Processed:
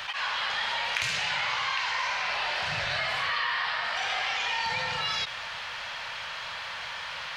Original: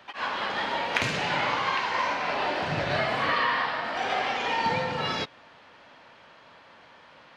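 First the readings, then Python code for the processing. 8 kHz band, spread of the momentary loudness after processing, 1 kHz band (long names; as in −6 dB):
+4.5 dB, 8 LU, −4.5 dB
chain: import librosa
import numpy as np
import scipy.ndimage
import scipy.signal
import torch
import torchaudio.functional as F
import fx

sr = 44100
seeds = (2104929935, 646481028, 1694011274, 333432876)

y = fx.tone_stack(x, sr, knobs='10-0-10')
y = fx.env_flatten(y, sr, amount_pct=70)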